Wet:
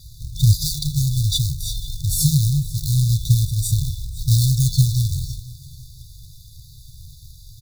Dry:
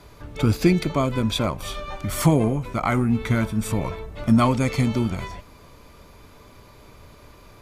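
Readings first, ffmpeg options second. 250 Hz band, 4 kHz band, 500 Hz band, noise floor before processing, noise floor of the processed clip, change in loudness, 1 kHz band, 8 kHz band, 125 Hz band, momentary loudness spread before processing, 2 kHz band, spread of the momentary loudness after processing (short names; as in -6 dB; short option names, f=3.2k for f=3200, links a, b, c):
n/a, +7.0 dB, under -40 dB, -49 dBFS, -44 dBFS, +3.0 dB, under -40 dB, +10.5 dB, +7.0 dB, 13 LU, under -40 dB, 11 LU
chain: -af "acrusher=bits=3:mode=log:mix=0:aa=0.000001,afftfilt=real='re*(1-between(b*sr/4096,160,3500))':imag='im*(1-between(b*sr/4096,160,3500))':win_size=4096:overlap=0.75,aecho=1:1:501|1002|1503:0.1|0.036|0.013,volume=8dB"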